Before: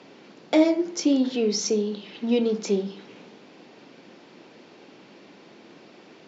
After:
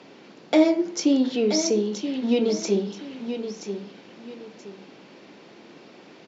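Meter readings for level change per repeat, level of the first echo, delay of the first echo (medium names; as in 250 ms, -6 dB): -10.5 dB, -9.0 dB, 977 ms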